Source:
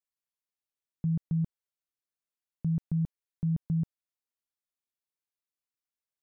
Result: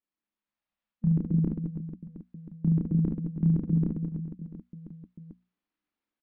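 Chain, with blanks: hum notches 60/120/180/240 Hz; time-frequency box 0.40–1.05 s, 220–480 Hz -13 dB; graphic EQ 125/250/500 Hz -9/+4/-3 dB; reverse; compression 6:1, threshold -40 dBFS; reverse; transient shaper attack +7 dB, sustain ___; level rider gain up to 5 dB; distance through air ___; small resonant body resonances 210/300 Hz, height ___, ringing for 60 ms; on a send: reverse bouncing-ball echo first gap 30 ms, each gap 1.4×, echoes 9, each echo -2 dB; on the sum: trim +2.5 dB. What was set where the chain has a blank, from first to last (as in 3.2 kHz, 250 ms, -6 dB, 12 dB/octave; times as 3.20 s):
-5 dB, 330 m, 9 dB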